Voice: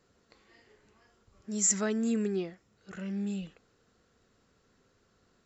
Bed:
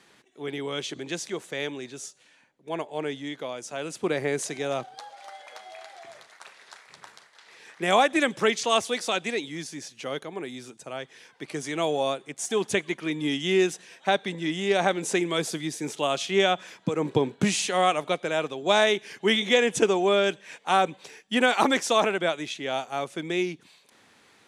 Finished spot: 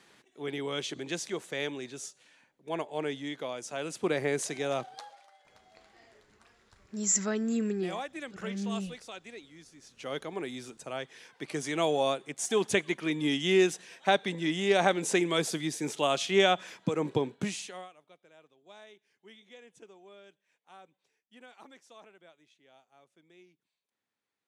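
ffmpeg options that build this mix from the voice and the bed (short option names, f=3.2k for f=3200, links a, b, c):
-filter_complex "[0:a]adelay=5450,volume=-0.5dB[a];[1:a]volume=13.5dB,afade=t=out:st=4.98:d=0.29:silence=0.177828,afade=t=in:st=9.81:d=0.44:silence=0.158489,afade=t=out:st=16.75:d=1.14:silence=0.0316228[b];[a][b]amix=inputs=2:normalize=0"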